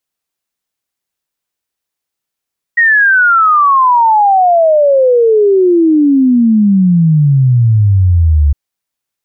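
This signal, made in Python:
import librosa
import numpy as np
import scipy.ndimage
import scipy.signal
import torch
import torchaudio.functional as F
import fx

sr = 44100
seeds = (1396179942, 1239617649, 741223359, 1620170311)

y = fx.ess(sr, length_s=5.76, from_hz=1900.0, to_hz=70.0, level_db=-5.0)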